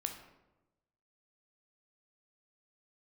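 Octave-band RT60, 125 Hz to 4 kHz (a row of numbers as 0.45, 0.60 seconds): 1.3, 1.2, 1.1, 0.95, 0.75, 0.55 seconds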